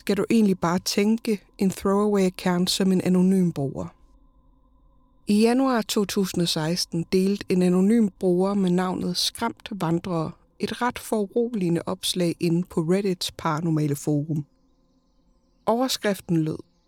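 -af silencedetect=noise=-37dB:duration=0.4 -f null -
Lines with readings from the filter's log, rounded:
silence_start: 3.89
silence_end: 5.28 | silence_duration: 1.39
silence_start: 14.42
silence_end: 15.67 | silence_duration: 1.25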